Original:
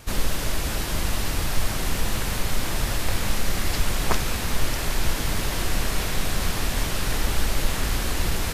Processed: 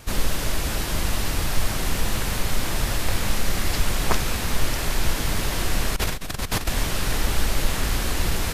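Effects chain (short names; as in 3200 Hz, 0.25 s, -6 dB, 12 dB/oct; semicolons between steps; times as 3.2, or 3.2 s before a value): 5.96–6.69 negative-ratio compressor -26 dBFS, ratio -0.5; gain +1 dB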